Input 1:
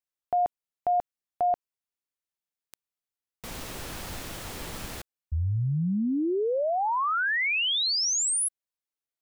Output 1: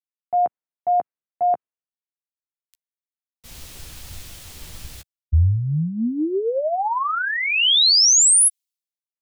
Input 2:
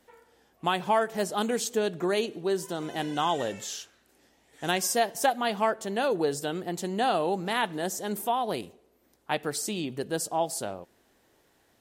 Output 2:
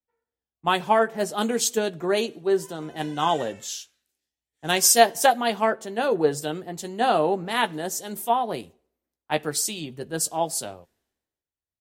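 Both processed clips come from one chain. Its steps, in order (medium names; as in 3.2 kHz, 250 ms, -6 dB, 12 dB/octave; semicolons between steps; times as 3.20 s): doubling 13 ms -10 dB; three bands expanded up and down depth 100%; trim +3 dB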